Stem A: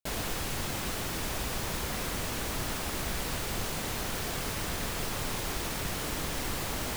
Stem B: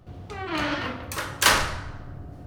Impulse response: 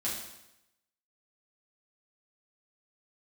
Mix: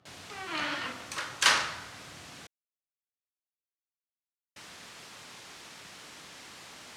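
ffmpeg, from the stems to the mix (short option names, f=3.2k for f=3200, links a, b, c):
-filter_complex "[0:a]volume=-9dB,asplit=3[a][b][c];[a]atrim=end=2.47,asetpts=PTS-STARTPTS,afade=t=out:st=2.466:d=0.004:c=hsin[d];[b]atrim=start=2.47:end=4.56,asetpts=PTS-STARTPTS,volume=0[e];[c]atrim=start=4.56,asetpts=PTS-STARTPTS,afade=t=in:d=0.004:c=hsin[f];[d][e][f]concat=n=3:v=0:a=1[g];[1:a]volume=-2dB[h];[g][h]amix=inputs=2:normalize=0,highpass=220,lowpass=7.1k,equalizer=f=390:t=o:w=2.7:g=-9"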